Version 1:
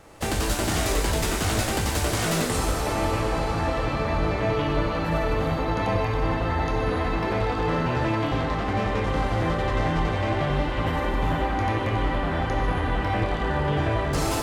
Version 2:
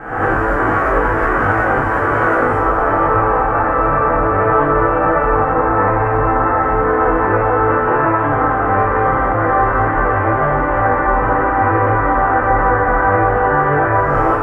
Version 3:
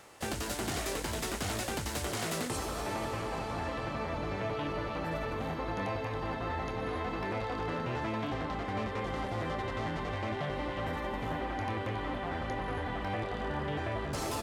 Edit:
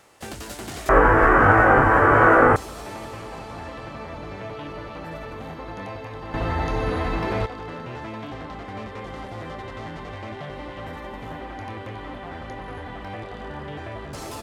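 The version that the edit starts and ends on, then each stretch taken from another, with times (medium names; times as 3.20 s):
3
0.89–2.56 s: from 2
6.34–7.46 s: from 1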